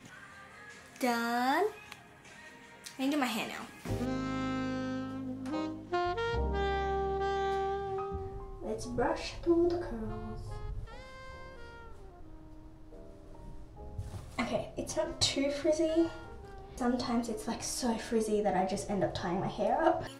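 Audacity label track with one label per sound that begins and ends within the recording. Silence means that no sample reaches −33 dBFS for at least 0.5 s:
0.960000	1.920000	sound
2.860000	10.830000	sound
13.990000	16.080000	sound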